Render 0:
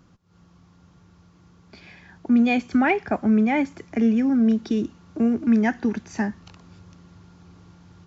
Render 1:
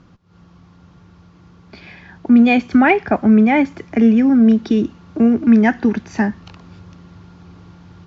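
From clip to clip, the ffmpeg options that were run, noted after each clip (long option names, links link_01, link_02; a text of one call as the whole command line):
ffmpeg -i in.wav -af "lowpass=4700,volume=7.5dB" out.wav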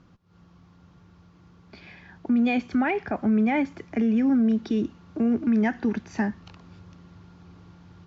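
ffmpeg -i in.wav -af "alimiter=limit=-8.5dB:level=0:latency=1:release=64,volume=-7.5dB" out.wav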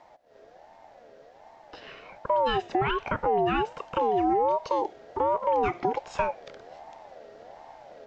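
ffmpeg -i in.wav -af "acompressor=threshold=-27dB:ratio=2,afreqshift=-57,aeval=exprs='val(0)*sin(2*PI*660*n/s+660*0.2/1.3*sin(2*PI*1.3*n/s))':channel_layout=same,volume=4.5dB" out.wav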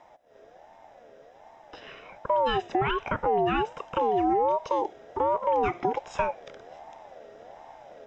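ffmpeg -i in.wav -af "asuperstop=centerf=4400:order=4:qfactor=6.2" out.wav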